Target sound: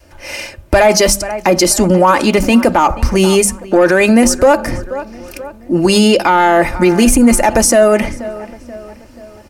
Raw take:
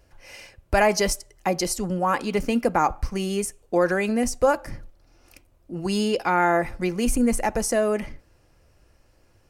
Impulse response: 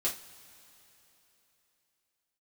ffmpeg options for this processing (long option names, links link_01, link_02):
-filter_complex "[0:a]adynamicequalizer=threshold=0.0224:dfrequency=250:dqfactor=0.92:tfrequency=250:tqfactor=0.92:attack=5:release=100:ratio=0.375:range=2.5:mode=cutabove:tftype=bell,asplit=2[link_01][link_02];[link_02]adelay=482,lowpass=frequency=3100:poles=1,volume=-21.5dB,asplit=2[link_03][link_04];[link_04]adelay=482,lowpass=frequency=3100:poles=1,volume=0.5,asplit=2[link_05][link_06];[link_06]adelay=482,lowpass=frequency=3100:poles=1,volume=0.5,asplit=2[link_07][link_08];[link_08]adelay=482,lowpass=frequency=3100:poles=1,volume=0.5[link_09];[link_03][link_05][link_07][link_09]amix=inputs=4:normalize=0[link_10];[link_01][link_10]amix=inputs=2:normalize=0,dynaudnorm=framelen=110:gausssize=3:maxgain=3dB,highpass=frequency=83:poles=1,lowshelf=frequency=390:gain=3.5,bandreject=frequency=50:width_type=h:width=6,bandreject=frequency=100:width_type=h:width=6,bandreject=frequency=150:width_type=h:width=6,bandreject=frequency=200:width_type=h:width=6,bandreject=frequency=250:width_type=h:width=6,aecho=1:1:3.3:0.43,asoftclip=type=tanh:threshold=-8.5dB,alimiter=level_in=15.5dB:limit=-1dB:release=50:level=0:latency=1,volume=-1dB"